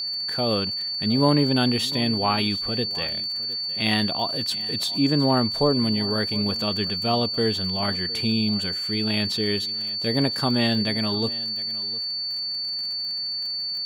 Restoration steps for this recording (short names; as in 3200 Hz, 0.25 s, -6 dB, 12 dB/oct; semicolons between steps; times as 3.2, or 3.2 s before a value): de-click; notch 4500 Hz, Q 30; inverse comb 0.71 s -19 dB